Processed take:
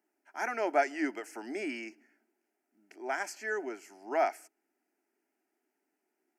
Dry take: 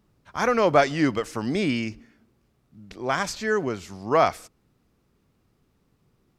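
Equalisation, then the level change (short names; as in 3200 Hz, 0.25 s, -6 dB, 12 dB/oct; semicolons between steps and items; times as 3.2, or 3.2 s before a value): HPF 320 Hz 24 dB/oct; fixed phaser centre 750 Hz, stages 8; -6.0 dB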